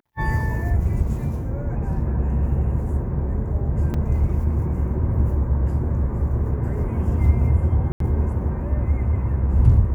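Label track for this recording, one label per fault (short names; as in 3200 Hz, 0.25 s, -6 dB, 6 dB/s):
3.940000	3.940000	gap 3.8 ms
7.920000	8.000000	gap 83 ms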